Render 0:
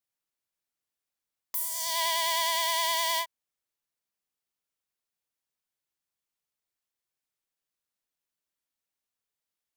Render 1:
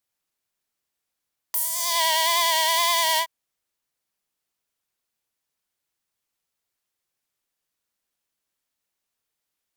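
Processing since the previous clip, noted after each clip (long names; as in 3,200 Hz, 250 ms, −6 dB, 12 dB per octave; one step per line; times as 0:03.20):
tape wow and flutter 58 cents
level +6.5 dB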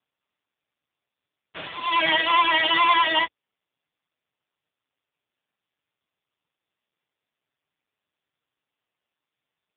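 lower of the sound and its delayed copy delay 6.7 ms
level +8 dB
AMR narrowband 5.15 kbit/s 8,000 Hz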